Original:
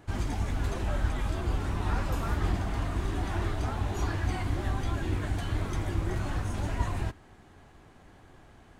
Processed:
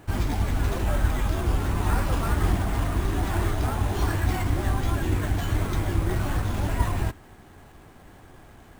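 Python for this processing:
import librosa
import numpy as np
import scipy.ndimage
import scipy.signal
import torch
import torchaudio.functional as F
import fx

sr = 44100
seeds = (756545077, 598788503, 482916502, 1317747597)

y = fx.sample_hold(x, sr, seeds[0], rate_hz=10000.0, jitter_pct=0)
y = y * librosa.db_to_amplitude(5.5)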